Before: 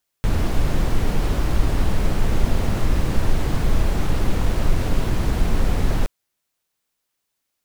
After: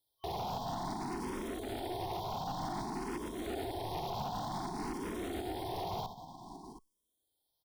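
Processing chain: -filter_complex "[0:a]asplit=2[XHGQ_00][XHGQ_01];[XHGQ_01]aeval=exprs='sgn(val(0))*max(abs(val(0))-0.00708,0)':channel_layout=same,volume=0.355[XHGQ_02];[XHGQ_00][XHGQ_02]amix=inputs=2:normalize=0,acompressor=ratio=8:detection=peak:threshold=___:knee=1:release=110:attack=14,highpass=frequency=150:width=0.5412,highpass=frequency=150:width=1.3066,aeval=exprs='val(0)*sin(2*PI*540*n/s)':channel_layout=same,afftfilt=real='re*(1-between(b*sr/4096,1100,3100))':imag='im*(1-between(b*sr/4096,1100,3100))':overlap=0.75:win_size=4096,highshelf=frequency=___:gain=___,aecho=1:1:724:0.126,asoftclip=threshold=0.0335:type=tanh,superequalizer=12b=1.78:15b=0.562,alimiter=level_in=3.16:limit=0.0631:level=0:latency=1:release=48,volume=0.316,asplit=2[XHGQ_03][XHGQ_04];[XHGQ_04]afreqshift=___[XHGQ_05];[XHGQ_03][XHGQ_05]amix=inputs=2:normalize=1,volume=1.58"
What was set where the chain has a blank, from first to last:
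0.158, 6400, -4, 0.54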